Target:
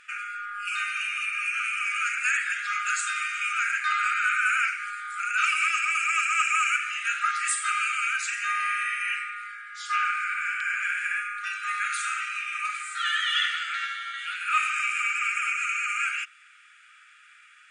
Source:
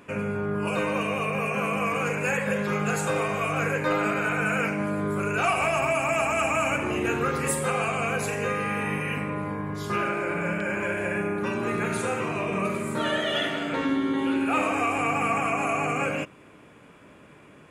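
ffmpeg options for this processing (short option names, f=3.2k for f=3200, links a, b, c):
-af "afftfilt=real='re*between(b*sr/4096,1200,9600)':imag='im*between(b*sr/4096,1200,9600)':win_size=4096:overlap=0.75,volume=4dB"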